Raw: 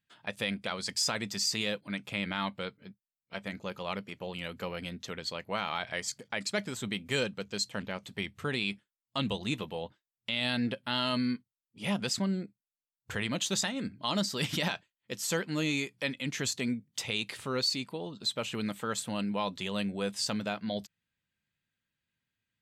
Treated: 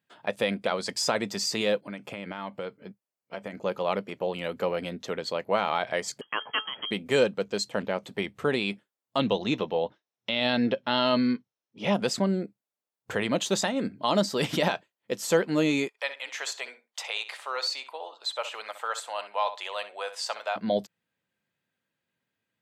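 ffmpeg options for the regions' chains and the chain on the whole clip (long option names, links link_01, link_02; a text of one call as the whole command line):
ffmpeg -i in.wav -filter_complex "[0:a]asettb=1/sr,asplit=3[link_01][link_02][link_03];[link_01]atrim=end=1.814[link_04];[link_02]atrim=start=1.81:end=3.64,asetpts=PTS-STARTPTS,afade=type=in:duration=0.004:curve=qsin,afade=type=out:start_time=1.826:duration=0.004:curve=qsin,bandreject=frequency=3800:width=6.6,acompressor=threshold=-39dB:ratio=4:attack=3.2:release=140:knee=1:detection=peak[link_05];[link_03]atrim=start=3.636[link_06];[link_04][link_05]acrossfade=duration=0.004:curve1=hsin:curve2=qsin[link_07];[link_07][link_06]acrossfade=duration=0.004:curve1=qsin:curve2=hsin,asettb=1/sr,asplit=3[link_08][link_09][link_10];[link_08]atrim=end=6.214[link_11];[link_09]atrim=start=6.21:end=6.91,asetpts=PTS-STARTPTS,afade=type=in:duration=0.004:curve=qsin,afade=type=out:start_time=0.696:duration=0.004:curve=qsin,lowpass=frequency=2900:width_type=q:width=0.5098,lowpass=frequency=2900:width_type=q:width=0.6013,lowpass=frequency=2900:width_type=q:width=0.9,lowpass=frequency=2900:width_type=q:width=2.563,afreqshift=-3400,bandreject=frequency=432.8:width_type=h:width=4,bandreject=frequency=865.6:width_type=h:width=4,bandreject=frequency=1298.4:width_type=h:width=4,bandreject=frequency=1731.2:width_type=h:width=4[link_12];[link_10]atrim=start=6.906[link_13];[link_11][link_12]acrossfade=duration=0.004:curve1=hsin:curve2=qsin[link_14];[link_14][link_13]acrossfade=duration=0.004:curve1=qsin:curve2=hsin,asettb=1/sr,asplit=3[link_15][link_16][link_17];[link_15]atrim=end=9.204[link_18];[link_16]atrim=start=9.2:end=11.94,asetpts=PTS-STARTPTS,afade=type=in:duration=0.004:curve=qsin,afade=type=out:start_time=2.736:duration=0.004:curve=qsin,highshelf=frequency=7000:width_type=q:width=3:gain=-9.5,bandreject=frequency=4700:width=5.8[link_19];[link_17]atrim=start=11.936[link_20];[link_18][link_19]acrossfade=duration=0.004:curve1=hsin:curve2=qsin[link_21];[link_21][link_20]acrossfade=duration=0.004:curve1=qsin:curve2=hsin,asettb=1/sr,asplit=3[link_22][link_23][link_24];[link_22]atrim=end=15.884[link_25];[link_23]atrim=start=15.88:end=20.56,asetpts=PTS-STARTPTS,afade=type=in:duration=0.004:curve=qsin,afade=type=out:start_time=4.676:duration=0.004:curve=qsin,highpass=frequency=720:width=0.5412,highpass=frequency=720:width=1.3066,highshelf=frequency=8200:gain=-6.5,asplit=2[link_26][link_27];[link_27]adelay=64,lowpass=frequency=4100:poles=1,volume=-11.5dB,asplit=2[link_28][link_29];[link_29]adelay=64,lowpass=frequency=4100:poles=1,volume=0.16[link_30];[link_26][link_28][link_30]amix=inputs=3:normalize=0,atrim=end_sample=206388[link_31];[link_24]atrim=start=20.556[link_32];[link_25][link_31]acrossfade=duration=0.004:curve1=hsin:curve2=qsin[link_33];[link_33][link_32]acrossfade=duration=0.004:curve1=qsin:curve2=hsin,highpass=110,equalizer=frequency=550:width_type=o:width=2.4:gain=11.5" out.wav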